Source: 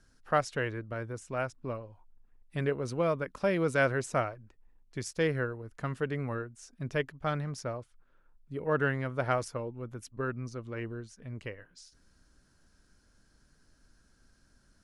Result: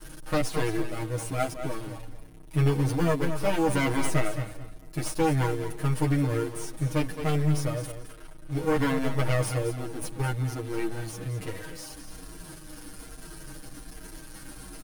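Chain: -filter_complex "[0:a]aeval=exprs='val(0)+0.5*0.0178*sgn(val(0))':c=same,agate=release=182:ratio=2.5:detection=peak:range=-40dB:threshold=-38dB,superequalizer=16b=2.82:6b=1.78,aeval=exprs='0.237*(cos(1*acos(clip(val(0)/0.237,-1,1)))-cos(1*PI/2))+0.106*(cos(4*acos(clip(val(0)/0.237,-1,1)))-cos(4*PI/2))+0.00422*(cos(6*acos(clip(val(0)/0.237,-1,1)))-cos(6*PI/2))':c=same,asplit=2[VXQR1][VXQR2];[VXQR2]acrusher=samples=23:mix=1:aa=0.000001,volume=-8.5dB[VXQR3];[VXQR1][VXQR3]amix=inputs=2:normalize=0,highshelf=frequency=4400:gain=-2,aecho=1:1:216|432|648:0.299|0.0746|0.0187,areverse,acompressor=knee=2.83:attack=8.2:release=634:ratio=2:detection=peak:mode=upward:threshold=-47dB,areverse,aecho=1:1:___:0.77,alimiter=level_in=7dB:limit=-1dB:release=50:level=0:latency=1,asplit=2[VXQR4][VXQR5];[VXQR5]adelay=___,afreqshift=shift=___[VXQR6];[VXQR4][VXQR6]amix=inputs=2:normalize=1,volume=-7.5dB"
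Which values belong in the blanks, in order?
6.4, 9, -1.2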